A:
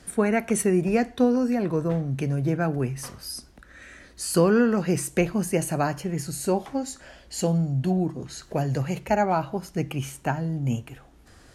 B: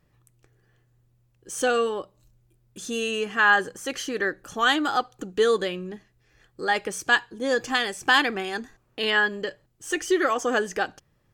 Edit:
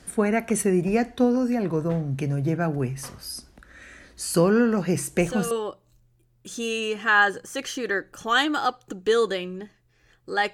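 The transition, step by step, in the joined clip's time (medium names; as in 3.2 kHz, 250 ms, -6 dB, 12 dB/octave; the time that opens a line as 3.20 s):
A
4.68 s: add B from 0.99 s 0.83 s -9 dB
5.51 s: go over to B from 1.82 s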